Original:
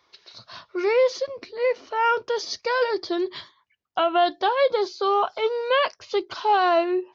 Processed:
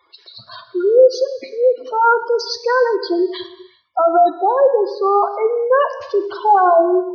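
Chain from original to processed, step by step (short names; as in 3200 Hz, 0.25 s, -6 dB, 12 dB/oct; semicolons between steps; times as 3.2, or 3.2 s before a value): spectral gate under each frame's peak -10 dB strong; 4.24–6.51 high shelf 2200 Hz -7.5 dB; non-linear reverb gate 0.43 s falling, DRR 9.5 dB; gain +8 dB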